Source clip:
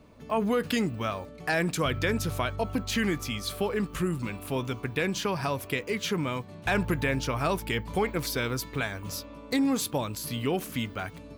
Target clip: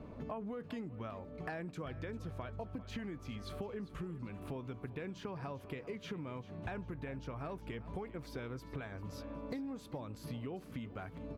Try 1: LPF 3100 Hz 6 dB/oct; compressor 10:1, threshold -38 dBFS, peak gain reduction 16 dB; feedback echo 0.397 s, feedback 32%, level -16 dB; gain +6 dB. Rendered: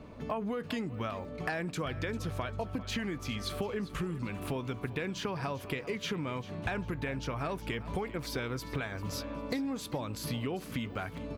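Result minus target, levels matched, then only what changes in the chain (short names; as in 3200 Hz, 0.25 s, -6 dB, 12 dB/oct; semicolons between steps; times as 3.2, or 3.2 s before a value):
compressor: peak gain reduction -7 dB; 4000 Hz band +6.0 dB
change: LPF 1000 Hz 6 dB/oct; change: compressor 10:1, threshold -46.5 dBFS, peak gain reduction 23.5 dB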